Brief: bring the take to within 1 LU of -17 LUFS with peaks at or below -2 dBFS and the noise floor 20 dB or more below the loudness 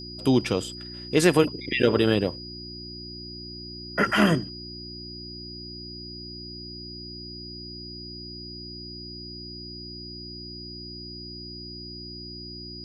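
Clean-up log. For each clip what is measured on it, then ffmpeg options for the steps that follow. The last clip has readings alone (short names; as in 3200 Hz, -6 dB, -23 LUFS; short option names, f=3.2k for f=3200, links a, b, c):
hum 60 Hz; harmonics up to 360 Hz; hum level -39 dBFS; steady tone 4900 Hz; tone level -39 dBFS; loudness -29.0 LUFS; peak -5.0 dBFS; loudness target -17.0 LUFS
-> -af "bandreject=f=60:t=h:w=4,bandreject=f=120:t=h:w=4,bandreject=f=180:t=h:w=4,bandreject=f=240:t=h:w=4,bandreject=f=300:t=h:w=4,bandreject=f=360:t=h:w=4"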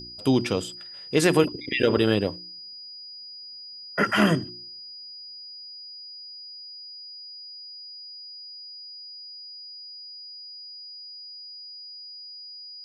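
hum none; steady tone 4900 Hz; tone level -39 dBFS
-> -af "bandreject=f=4.9k:w=30"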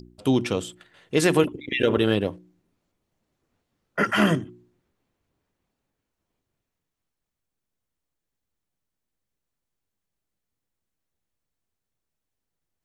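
steady tone none; loudness -23.5 LUFS; peak -5.5 dBFS; loudness target -17.0 LUFS
-> -af "volume=6.5dB,alimiter=limit=-2dB:level=0:latency=1"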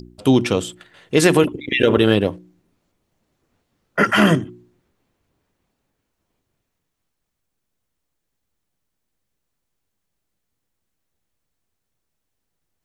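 loudness -17.5 LUFS; peak -2.0 dBFS; noise floor -77 dBFS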